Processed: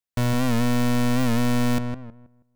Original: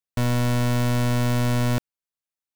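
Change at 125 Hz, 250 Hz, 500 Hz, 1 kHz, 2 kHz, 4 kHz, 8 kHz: -3.5, +3.5, 0.0, +0.5, 0.0, 0.0, 0.0 dB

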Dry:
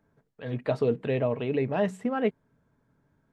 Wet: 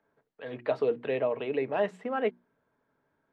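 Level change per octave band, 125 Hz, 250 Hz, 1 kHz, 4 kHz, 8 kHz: -14.0 dB, -7.5 dB, 0.0 dB, -1.5 dB, n/a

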